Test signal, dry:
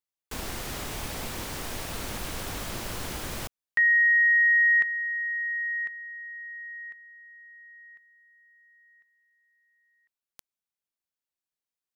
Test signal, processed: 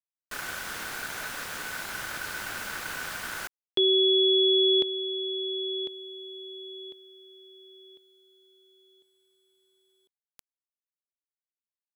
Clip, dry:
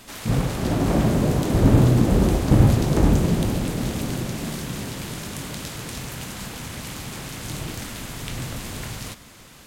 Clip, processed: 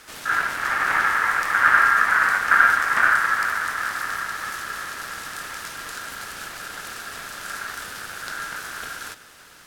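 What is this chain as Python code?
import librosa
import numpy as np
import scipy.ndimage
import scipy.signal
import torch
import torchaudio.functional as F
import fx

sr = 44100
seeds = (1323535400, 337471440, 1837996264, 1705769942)

y = fx.quant_dither(x, sr, seeds[0], bits=12, dither='none')
y = y * np.sin(2.0 * np.pi * 1500.0 * np.arange(len(y)) / sr)
y = F.gain(torch.from_numpy(y), 1.5).numpy()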